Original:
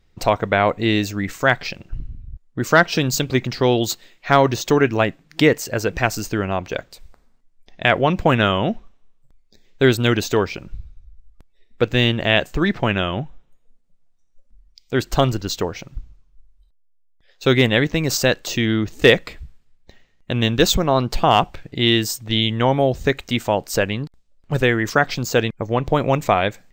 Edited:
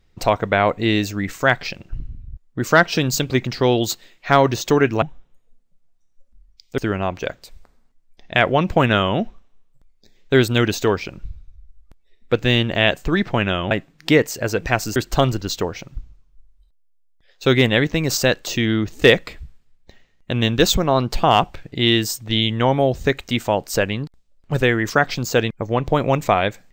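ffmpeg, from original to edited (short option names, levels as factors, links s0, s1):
-filter_complex "[0:a]asplit=5[s0][s1][s2][s3][s4];[s0]atrim=end=5.022[s5];[s1]atrim=start=13.198:end=14.962[s6];[s2]atrim=start=6.268:end=13.202[s7];[s3]atrim=start=5.018:end=6.272[s8];[s4]atrim=start=14.958[s9];[s5][s6]acrossfade=d=0.004:c1=hsin:c2=hsin[s10];[s10][s7]acrossfade=d=0.004:c1=hsin:c2=hsin[s11];[s11][s8]acrossfade=d=0.004:c1=hsin:c2=hsin[s12];[s12][s9]acrossfade=d=0.004:c1=hsin:c2=hsin"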